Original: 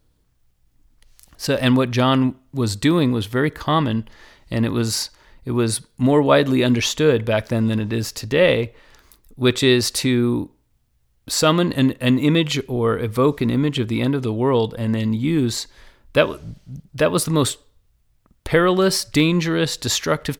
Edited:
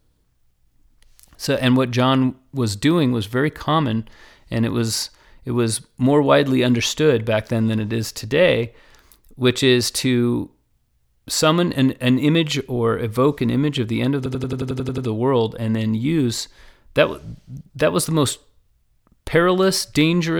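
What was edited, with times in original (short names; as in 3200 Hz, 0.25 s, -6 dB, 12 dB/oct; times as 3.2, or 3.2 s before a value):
14.17 stutter 0.09 s, 10 plays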